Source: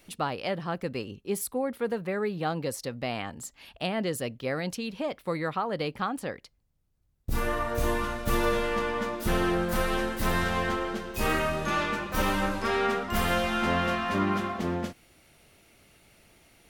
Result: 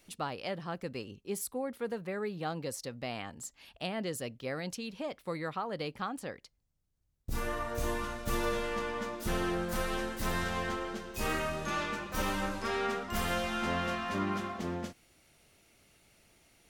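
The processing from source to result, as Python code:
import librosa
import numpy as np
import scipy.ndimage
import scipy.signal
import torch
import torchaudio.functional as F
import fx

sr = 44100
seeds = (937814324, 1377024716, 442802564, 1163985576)

y = fx.peak_eq(x, sr, hz=6600.0, db=4.5, octaves=1.2)
y = y * 10.0 ** (-6.5 / 20.0)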